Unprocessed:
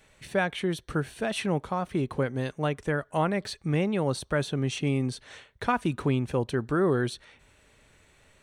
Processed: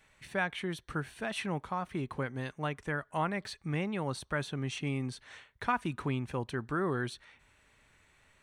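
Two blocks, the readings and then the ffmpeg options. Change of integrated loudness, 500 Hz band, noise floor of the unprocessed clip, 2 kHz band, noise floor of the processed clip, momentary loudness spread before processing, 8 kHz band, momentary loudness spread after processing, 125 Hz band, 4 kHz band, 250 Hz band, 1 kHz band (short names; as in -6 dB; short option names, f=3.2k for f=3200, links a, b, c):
-6.5 dB, -9.0 dB, -61 dBFS, -3.0 dB, -67 dBFS, 6 LU, -7.0 dB, 5 LU, -7.0 dB, -5.5 dB, -7.5 dB, -4.0 dB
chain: -af "equalizer=f=500:t=o:w=1:g=-4,equalizer=f=1k:t=o:w=1:g=4,equalizer=f=2k:t=o:w=1:g=4,volume=-7dB"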